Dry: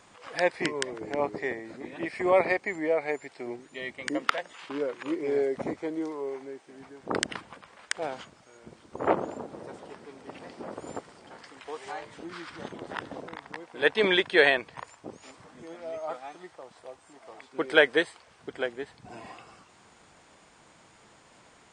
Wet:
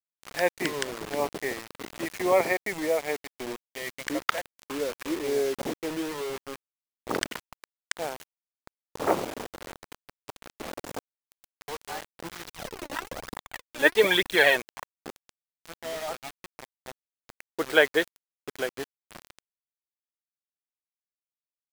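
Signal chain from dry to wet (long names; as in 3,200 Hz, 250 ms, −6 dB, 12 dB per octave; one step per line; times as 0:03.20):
bit reduction 6 bits
0:12.45–0:14.56: phase shifter 1.1 Hz, delay 3.7 ms, feedback 60%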